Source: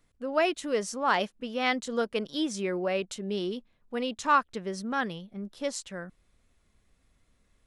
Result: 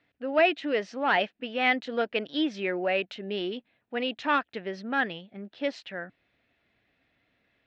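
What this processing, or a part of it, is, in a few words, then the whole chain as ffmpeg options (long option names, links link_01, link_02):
overdrive pedal into a guitar cabinet: -filter_complex "[0:a]asplit=2[link_01][link_02];[link_02]highpass=frequency=720:poles=1,volume=10dB,asoftclip=type=tanh:threshold=-11dB[link_03];[link_01][link_03]amix=inputs=2:normalize=0,lowpass=frequency=4400:poles=1,volume=-6dB,highpass=85,equalizer=frequency=120:width_type=q:width=4:gain=6,equalizer=frequency=290:width_type=q:width=4:gain=7,equalizer=frequency=690:width_type=q:width=4:gain=5,equalizer=frequency=1100:width_type=q:width=4:gain=-8,equalizer=frequency=1800:width_type=q:width=4:gain=5,equalizer=frequency=2600:width_type=q:width=4:gain=5,lowpass=frequency=4100:width=0.5412,lowpass=frequency=4100:width=1.3066,volume=-2dB"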